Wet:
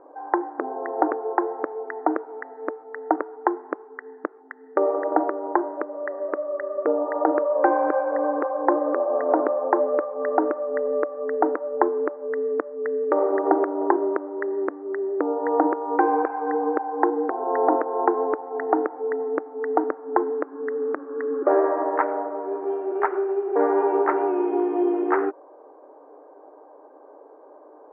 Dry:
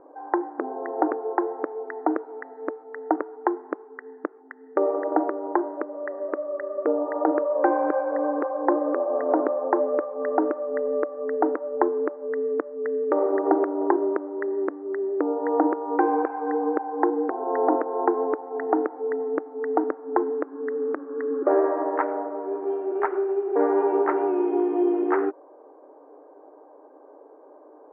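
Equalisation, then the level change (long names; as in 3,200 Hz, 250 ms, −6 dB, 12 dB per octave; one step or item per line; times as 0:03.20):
high-frequency loss of the air 210 metres
low-shelf EQ 330 Hz −10 dB
+5.0 dB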